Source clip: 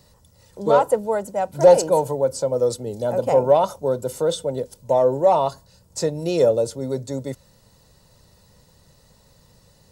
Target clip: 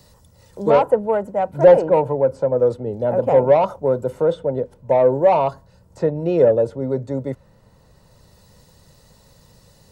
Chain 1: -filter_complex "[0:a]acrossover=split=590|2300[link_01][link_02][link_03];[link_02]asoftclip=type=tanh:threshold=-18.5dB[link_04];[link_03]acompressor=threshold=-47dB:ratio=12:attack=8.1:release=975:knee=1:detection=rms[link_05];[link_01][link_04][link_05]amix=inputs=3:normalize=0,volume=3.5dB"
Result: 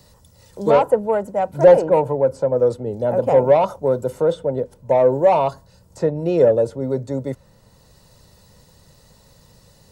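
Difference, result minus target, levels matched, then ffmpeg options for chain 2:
downward compressor: peak gain reduction −8 dB
-filter_complex "[0:a]acrossover=split=590|2300[link_01][link_02][link_03];[link_02]asoftclip=type=tanh:threshold=-18.5dB[link_04];[link_03]acompressor=threshold=-55.5dB:ratio=12:attack=8.1:release=975:knee=1:detection=rms[link_05];[link_01][link_04][link_05]amix=inputs=3:normalize=0,volume=3.5dB"

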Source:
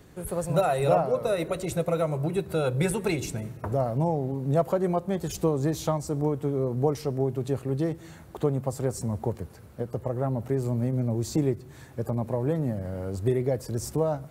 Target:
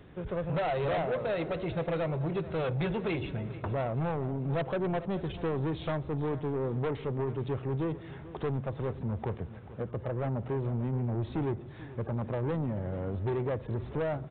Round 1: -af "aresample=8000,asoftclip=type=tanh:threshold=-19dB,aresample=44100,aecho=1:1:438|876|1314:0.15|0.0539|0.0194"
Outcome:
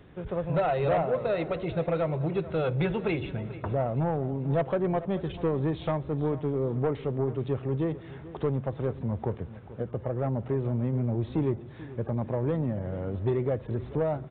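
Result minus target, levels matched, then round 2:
soft clipping: distortion −7 dB
-af "aresample=8000,asoftclip=type=tanh:threshold=-27dB,aresample=44100,aecho=1:1:438|876|1314:0.15|0.0539|0.0194"

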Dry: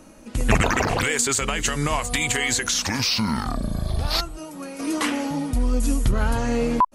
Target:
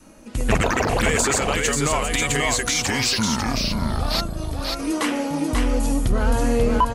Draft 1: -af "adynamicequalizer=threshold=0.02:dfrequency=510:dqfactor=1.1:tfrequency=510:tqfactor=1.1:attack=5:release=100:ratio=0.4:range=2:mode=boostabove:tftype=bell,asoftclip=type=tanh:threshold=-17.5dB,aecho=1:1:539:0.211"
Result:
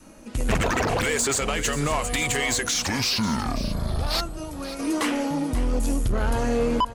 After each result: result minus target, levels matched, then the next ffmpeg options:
echo-to-direct −10 dB; soft clipping: distortion +10 dB
-af "adynamicequalizer=threshold=0.02:dfrequency=510:dqfactor=1.1:tfrequency=510:tqfactor=1.1:attack=5:release=100:ratio=0.4:range=2:mode=boostabove:tftype=bell,asoftclip=type=tanh:threshold=-17.5dB,aecho=1:1:539:0.668"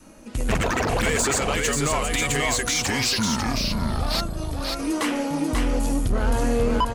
soft clipping: distortion +10 dB
-af "adynamicequalizer=threshold=0.02:dfrequency=510:dqfactor=1.1:tfrequency=510:tqfactor=1.1:attack=5:release=100:ratio=0.4:range=2:mode=boostabove:tftype=bell,asoftclip=type=tanh:threshold=-9.5dB,aecho=1:1:539:0.668"

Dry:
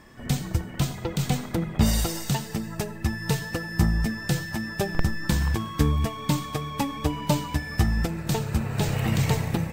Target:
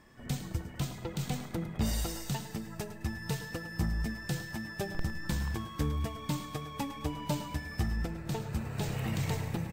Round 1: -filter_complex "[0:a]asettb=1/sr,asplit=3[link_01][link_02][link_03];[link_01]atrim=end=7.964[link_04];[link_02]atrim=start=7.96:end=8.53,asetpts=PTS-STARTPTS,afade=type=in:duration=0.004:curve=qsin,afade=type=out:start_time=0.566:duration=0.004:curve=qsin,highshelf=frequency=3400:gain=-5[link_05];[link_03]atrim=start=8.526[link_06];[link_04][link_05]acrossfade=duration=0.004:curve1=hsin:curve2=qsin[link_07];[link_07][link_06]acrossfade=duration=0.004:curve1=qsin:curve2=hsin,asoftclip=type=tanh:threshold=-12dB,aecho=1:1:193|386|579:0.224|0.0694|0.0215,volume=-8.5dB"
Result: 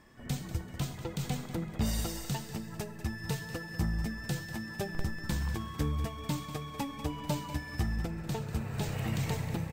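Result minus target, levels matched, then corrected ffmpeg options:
echo 87 ms late
-filter_complex "[0:a]asettb=1/sr,asplit=3[link_01][link_02][link_03];[link_01]atrim=end=7.964[link_04];[link_02]atrim=start=7.96:end=8.53,asetpts=PTS-STARTPTS,afade=type=in:duration=0.004:curve=qsin,afade=type=out:start_time=0.566:duration=0.004:curve=qsin,highshelf=frequency=3400:gain=-5[link_05];[link_03]atrim=start=8.526[link_06];[link_04][link_05]acrossfade=duration=0.004:curve1=hsin:curve2=qsin[link_07];[link_07][link_06]acrossfade=duration=0.004:curve1=qsin:curve2=hsin,asoftclip=type=tanh:threshold=-12dB,aecho=1:1:106|212|318:0.224|0.0694|0.0215,volume=-8.5dB"

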